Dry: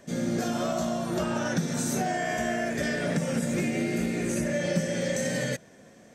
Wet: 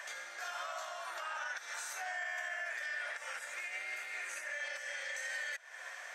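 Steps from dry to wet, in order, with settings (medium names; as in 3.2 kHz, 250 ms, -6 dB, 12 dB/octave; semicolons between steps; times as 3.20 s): compression 16:1, threshold -42 dBFS, peak gain reduction 21.5 dB; high-pass 780 Hz 24 dB/octave; peaking EQ 1.7 kHz +12 dB 1.9 oct; peak limiter -36 dBFS, peak gain reduction 8 dB; trim +4.5 dB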